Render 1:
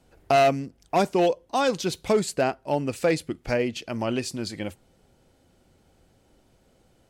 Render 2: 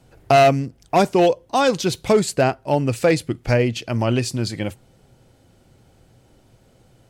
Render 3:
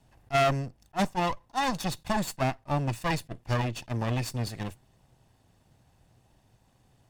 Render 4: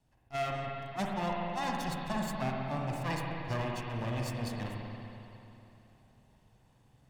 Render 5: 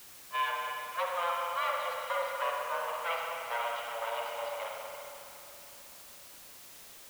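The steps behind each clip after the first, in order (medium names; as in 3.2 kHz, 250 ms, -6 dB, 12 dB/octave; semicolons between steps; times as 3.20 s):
peaking EQ 120 Hz +10 dB 0.4 oct; trim +5.5 dB
comb filter that takes the minimum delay 1.1 ms; attacks held to a fixed rise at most 560 dB/s; trim -8 dB
gain riding 0.5 s; spring tank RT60 3 s, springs 46/59 ms, chirp 50 ms, DRR -1.5 dB; trim -9 dB
mistuned SSB +340 Hz 200–3300 Hz; added noise white -54 dBFS; trim +2.5 dB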